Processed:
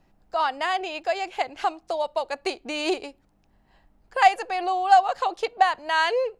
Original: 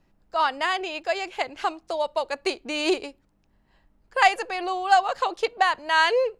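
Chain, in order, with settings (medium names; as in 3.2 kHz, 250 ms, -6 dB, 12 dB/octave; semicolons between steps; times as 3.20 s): in parallel at 0 dB: compression, threshold -36 dBFS, peak gain reduction 21.5 dB; on the sum: peaking EQ 750 Hz +6.5 dB 0.32 oct; trim -4 dB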